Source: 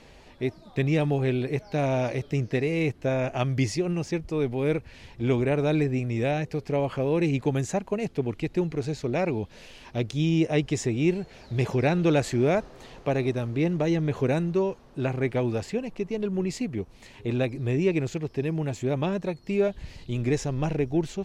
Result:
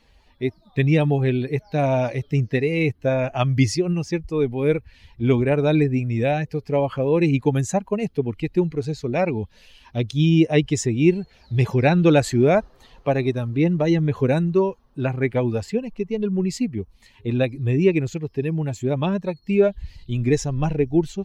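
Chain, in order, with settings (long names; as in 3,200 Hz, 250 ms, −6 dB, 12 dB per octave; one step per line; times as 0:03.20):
spectral dynamics exaggerated over time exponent 1.5
level +8.5 dB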